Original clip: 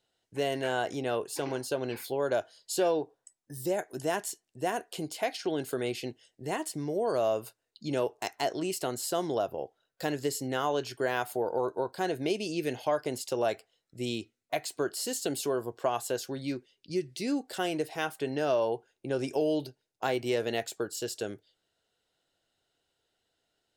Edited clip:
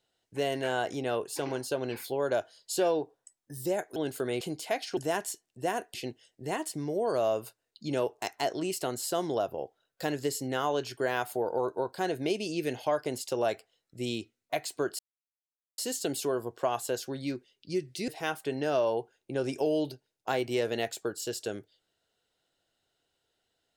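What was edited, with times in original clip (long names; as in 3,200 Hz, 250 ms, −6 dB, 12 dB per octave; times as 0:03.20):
0:03.96–0:04.93: swap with 0:05.49–0:05.94
0:14.99: splice in silence 0.79 s
0:17.29–0:17.83: remove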